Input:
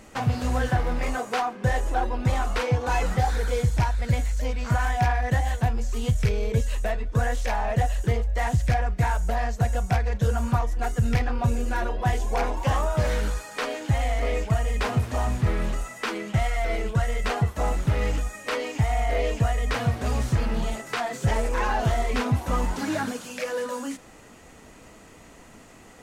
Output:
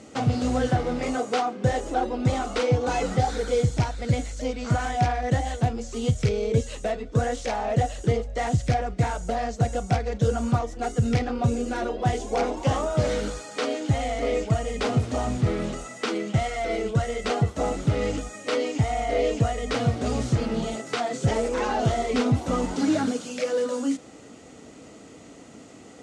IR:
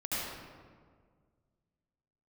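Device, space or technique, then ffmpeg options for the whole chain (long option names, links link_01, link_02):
car door speaker: -af "highpass=100,equalizer=frequency=280:width_type=q:width=4:gain=6,equalizer=frequency=460:width_type=q:width=4:gain=3,equalizer=frequency=990:width_type=q:width=4:gain=-8,equalizer=frequency=1700:width_type=q:width=4:gain=-8,equalizer=frequency=2500:width_type=q:width=4:gain=-4,lowpass=frequency=8600:width=0.5412,lowpass=frequency=8600:width=1.3066,volume=2.5dB"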